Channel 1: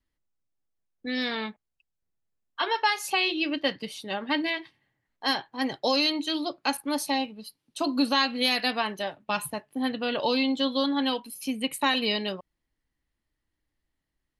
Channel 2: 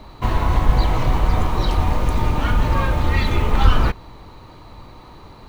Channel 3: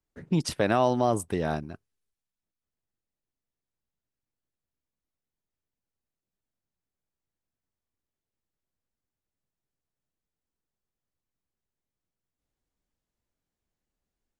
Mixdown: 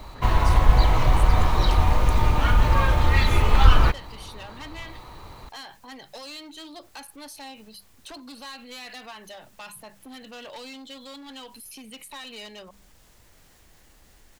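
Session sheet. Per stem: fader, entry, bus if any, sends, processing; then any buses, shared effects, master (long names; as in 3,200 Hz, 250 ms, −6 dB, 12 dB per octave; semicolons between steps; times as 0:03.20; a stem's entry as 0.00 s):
−0.5 dB, 0.30 s, bus A, no send, mains-hum notches 50/100/150/200 Hz; multiband upward and downward compressor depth 70%
+0.5 dB, 0.00 s, no bus, no send, no processing
−0.5 dB, 0.00 s, bus A, no send, envelope flattener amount 50%
bus A: 0.0 dB, gain into a clipping stage and back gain 25 dB; brickwall limiter −34.5 dBFS, peak gain reduction 9.5 dB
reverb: not used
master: parametric band 240 Hz −6 dB 2 octaves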